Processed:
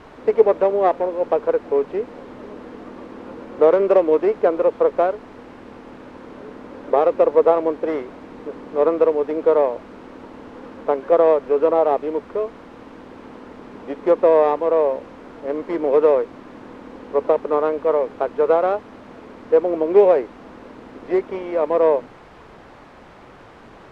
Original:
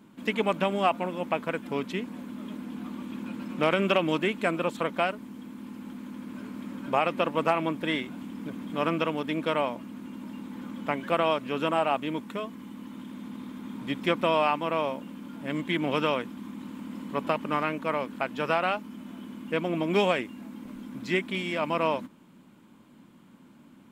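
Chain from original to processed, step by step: tracing distortion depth 0.28 ms; resonant high-pass 450 Hz, resonance Q 4.4; requantised 6-bit, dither triangular; LPF 1100 Hz 12 dB/oct; gain +4 dB

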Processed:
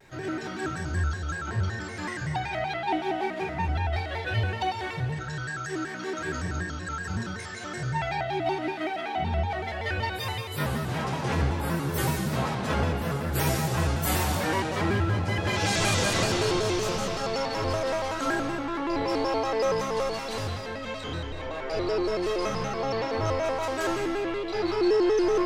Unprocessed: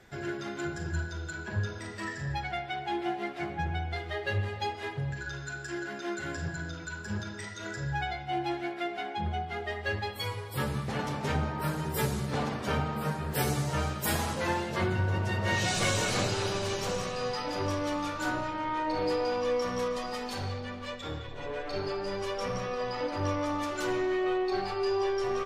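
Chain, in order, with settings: non-linear reverb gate 0.43 s falling, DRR -1.5 dB; shaped vibrato square 5.3 Hz, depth 160 cents

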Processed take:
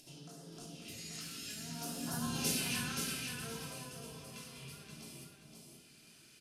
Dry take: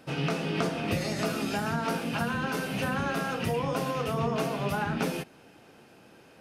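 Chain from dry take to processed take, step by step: Doppler pass-by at 2.42, 12 m/s, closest 2.6 m; LPF 11000 Hz 12 dB/oct; pre-emphasis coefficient 0.9; upward compressor, threshold -56 dBFS; phaser stages 2, 0.61 Hz, lowest notch 600–2400 Hz; feedback echo 0.525 s, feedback 28%, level -5 dB; reverb RT60 0.60 s, pre-delay 3 ms, DRR -1.5 dB; gain +8.5 dB

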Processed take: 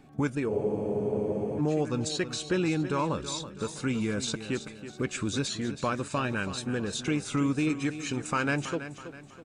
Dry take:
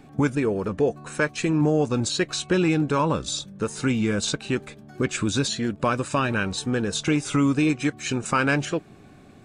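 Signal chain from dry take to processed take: feedback echo 0.326 s, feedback 42%, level -12 dB; spectral freeze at 0.52, 1.07 s; gain -6.5 dB

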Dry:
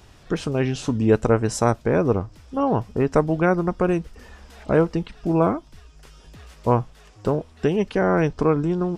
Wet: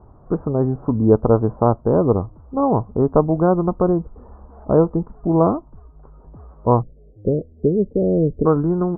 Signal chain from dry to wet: steep low-pass 1200 Hz 48 dB/oct, from 6.81 s 560 Hz, from 8.45 s 1400 Hz; gain +3.5 dB

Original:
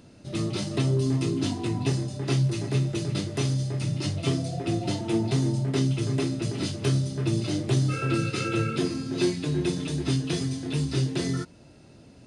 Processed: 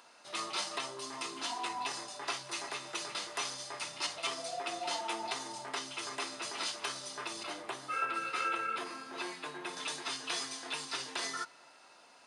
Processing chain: 7.43–9.77 bell 5800 Hz -10.5 dB 2 oct; limiter -20 dBFS, peak gain reduction 6.5 dB; resonant high-pass 990 Hz, resonance Q 2.2; reverb RT60 2.7 s, pre-delay 4 ms, DRR 15.5 dB

